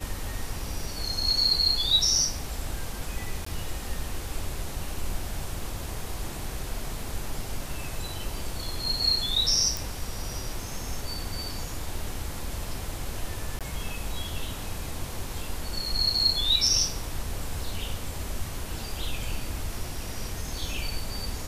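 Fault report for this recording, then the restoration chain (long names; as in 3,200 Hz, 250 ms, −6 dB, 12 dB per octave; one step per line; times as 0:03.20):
0:03.45–0:03.46: drop-out 14 ms
0:09.77: click
0:13.59–0:13.61: drop-out 17 ms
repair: click removal
repair the gap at 0:03.45, 14 ms
repair the gap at 0:13.59, 17 ms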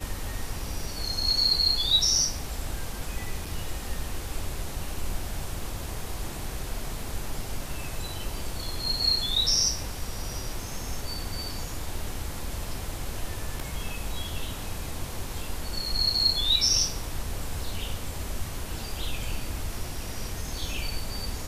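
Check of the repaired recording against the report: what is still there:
none of them is left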